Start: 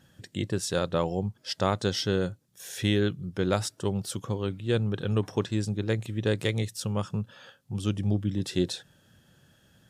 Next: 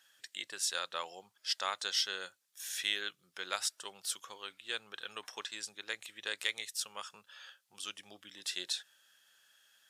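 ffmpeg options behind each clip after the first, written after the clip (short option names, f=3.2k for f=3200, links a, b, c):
-af "highpass=1.5k"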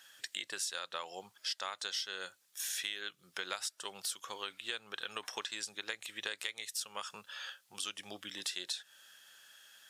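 -af "acompressor=threshold=-44dB:ratio=6,volume=8dB"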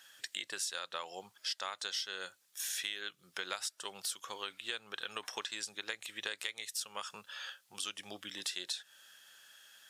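-af anull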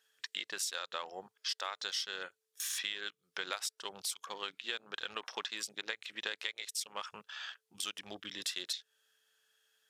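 -af "aeval=exprs='val(0)+0.000251*sin(2*PI*440*n/s)':c=same,afwtdn=0.00316,volume=1dB"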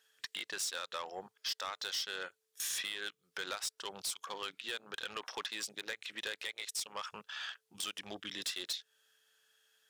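-af "asoftclip=type=tanh:threshold=-33dB,volume=2.5dB"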